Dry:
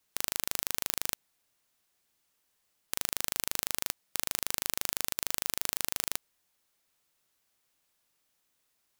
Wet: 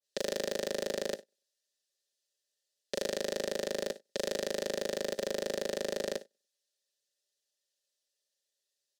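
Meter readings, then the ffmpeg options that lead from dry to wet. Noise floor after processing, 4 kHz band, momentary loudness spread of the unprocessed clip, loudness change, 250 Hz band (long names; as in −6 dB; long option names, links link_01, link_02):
below −85 dBFS, −3.0 dB, 3 LU, −3.5 dB, +8.5 dB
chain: -filter_complex "[0:a]asplit=2[link_01][link_02];[link_02]highpass=frequency=720:poles=1,volume=28dB,asoftclip=type=tanh:threshold=-2dB[link_03];[link_01][link_03]amix=inputs=2:normalize=0,lowpass=frequency=5000:poles=1,volume=-6dB,aexciter=amount=9.4:drive=9.5:freq=3800,highpass=frequency=170:width=0.5412,highpass=frequency=170:width=1.3066,asplit=2[link_04][link_05];[link_05]adelay=96,lowpass=frequency=3500:poles=1,volume=-14dB,asplit=2[link_06][link_07];[link_07]adelay=96,lowpass=frequency=3500:poles=1,volume=0.34,asplit=2[link_08][link_09];[link_09]adelay=96,lowpass=frequency=3500:poles=1,volume=0.34[link_10];[link_06][link_08][link_10]amix=inputs=3:normalize=0[link_11];[link_04][link_11]amix=inputs=2:normalize=0,agate=range=-26dB:threshold=-24dB:ratio=16:detection=peak,asplit=3[link_12][link_13][link_14];[link_12]bandpass=frequency=530:width_type=q:width=8,volume=0dB[link_15];[link_13]bandpass=frequency=1840:width_type=q:width=8,volume=-6dB[link_16];[link_14]bandpass=frequency=2480:width_type=q:width=8,volume=-9dB[link_17];[link_15][link_16][link_17]amix=inputs=3:normalize=0,equalizer=frequency=230:width_type=o:width=2.7:gain=11,aecho=1:1:5:0.91,aeval=exprs='clip(val(0),-1,0.0447)':channel_layout=same,adynamicequalizer=threshold=0.00447:dfrequency=1700:dqfactor=0.7:tfrequency=1700:tqfactor=0.7:attack=5:release=100:ratio=0.375:range=2:mode=cutabove:tftype=highshelf"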